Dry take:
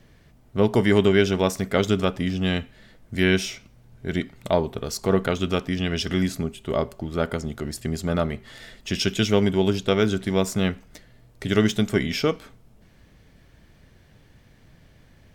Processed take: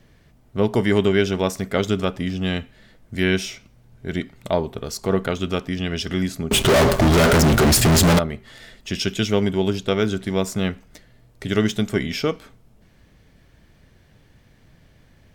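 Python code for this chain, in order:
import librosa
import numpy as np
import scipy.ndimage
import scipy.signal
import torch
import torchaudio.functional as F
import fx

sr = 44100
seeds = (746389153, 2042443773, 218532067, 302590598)

y = fx.fuzz(x, sr, gain_db=45.0, gate_db=-54.0, at=(6.51, 8.19))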